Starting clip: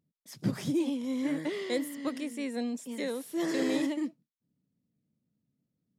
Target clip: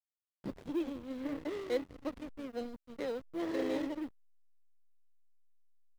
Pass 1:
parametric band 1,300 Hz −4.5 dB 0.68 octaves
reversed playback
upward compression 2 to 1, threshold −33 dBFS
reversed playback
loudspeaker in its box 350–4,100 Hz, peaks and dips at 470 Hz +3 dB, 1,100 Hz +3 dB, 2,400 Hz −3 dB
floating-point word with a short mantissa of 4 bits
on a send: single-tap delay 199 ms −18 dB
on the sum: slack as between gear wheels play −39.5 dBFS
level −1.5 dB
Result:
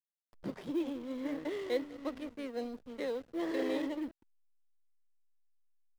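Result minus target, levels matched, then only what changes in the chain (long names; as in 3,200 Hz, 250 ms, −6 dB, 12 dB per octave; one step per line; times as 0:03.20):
slack as between gear wheels: distortion −6 dB
change: slack as between gear wheels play −33 dBFS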